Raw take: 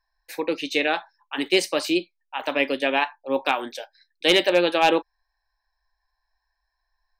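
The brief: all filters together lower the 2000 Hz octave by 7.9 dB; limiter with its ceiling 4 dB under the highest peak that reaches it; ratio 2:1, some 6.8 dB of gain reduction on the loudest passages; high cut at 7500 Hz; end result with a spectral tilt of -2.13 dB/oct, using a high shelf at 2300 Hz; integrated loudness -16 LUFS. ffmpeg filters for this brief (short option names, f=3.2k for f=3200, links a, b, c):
-af "lowpass=7.5k,equalizer=f=2k:t=o:g=-6.5,highshelf=f=2.3k:g=-6.5,acompressor=threshold=-28dB:ratio=2,volume=16.5dB,alimiter=limit=-3dB:level=0:latency=1"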